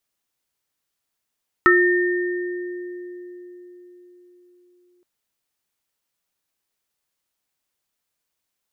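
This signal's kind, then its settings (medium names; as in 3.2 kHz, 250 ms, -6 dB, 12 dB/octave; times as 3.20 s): sine partials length 3.37 s, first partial 356 Hz, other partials 1.31/1.82 kHz, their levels 5/1 dB, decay 4.57 s, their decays 0.21/2.26 s, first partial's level -14 dB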